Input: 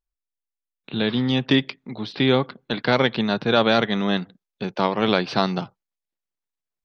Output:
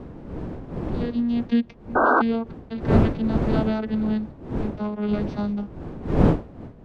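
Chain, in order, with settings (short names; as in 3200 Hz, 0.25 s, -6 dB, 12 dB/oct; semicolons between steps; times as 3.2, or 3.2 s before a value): vocoder on a gliding note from B3, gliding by -4 st; wind noise 290 Hz -23 dBFS; painted sound noise, 1.95–2.22, 230–1600 Hz -14 dBFS; gain -3.5 dB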